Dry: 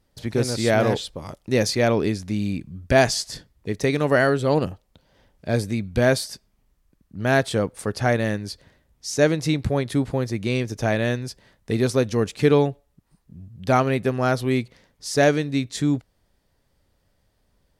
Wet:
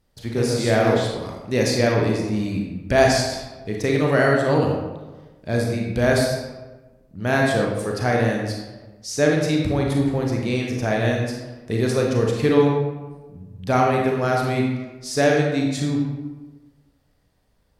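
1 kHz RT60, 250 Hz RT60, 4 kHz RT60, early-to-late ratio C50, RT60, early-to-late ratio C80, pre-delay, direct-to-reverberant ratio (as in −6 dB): 1.2 s, 1.3 s, 0.70 s, 1.5 dB, 1.3 s, 4.0 dB, 30 ms, −1.0 dB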